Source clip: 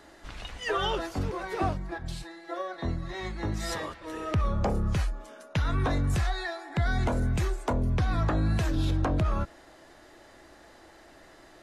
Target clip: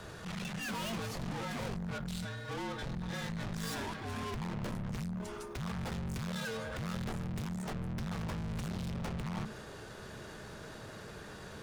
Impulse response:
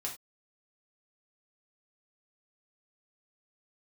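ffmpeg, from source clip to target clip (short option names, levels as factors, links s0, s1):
-af "acrusher=bits=8:mode=log:mix=0:aa=0.000001,aeval=exprs='(tanh(178*val(0)+0.35)-tanh(0.35))/178':c=same,afreqshift=-220,volume=2.37"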